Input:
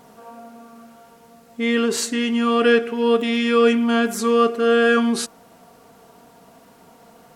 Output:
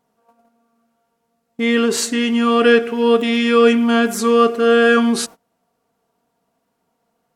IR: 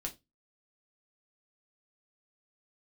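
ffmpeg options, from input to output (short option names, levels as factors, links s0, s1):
-af "agate=range=0.0631:threshold=0.0158:ratio=16:detection=peak,volume=1.5"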